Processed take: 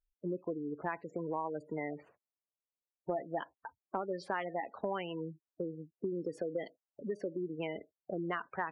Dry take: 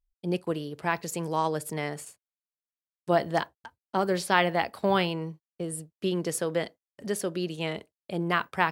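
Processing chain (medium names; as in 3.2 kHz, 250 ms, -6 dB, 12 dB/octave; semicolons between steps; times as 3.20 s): dynamic bell 290 Hz, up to +6 dB, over -52 dBFS, Q 6.7; level-controlled noise filter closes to 780 Hz, open at -20.5 dBFS; spectral gate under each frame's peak -15 dB strong; tone controls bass -9 dB, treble -8 dB; compression 4:1, threshold -37 dBFS, peak gain reduction 16.5 dB; trim +2 dB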